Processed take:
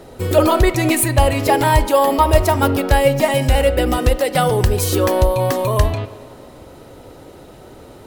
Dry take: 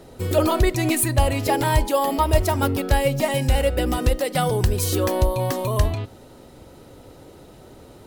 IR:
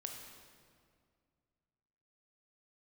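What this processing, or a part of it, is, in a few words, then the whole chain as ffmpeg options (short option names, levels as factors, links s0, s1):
filtered reverb send: -filter_complex "[0:a]asplit=2[s0][s1];[s1]highpass=290,lowpass=3400[s2];[1:a]atrim=start_sample=2205[s3];[s2][s3]afir=irnorm=-1:irlink=0,volume=0.562[s4];[s0][s4]amix=inputs=2:normalize=0,volume=1.58"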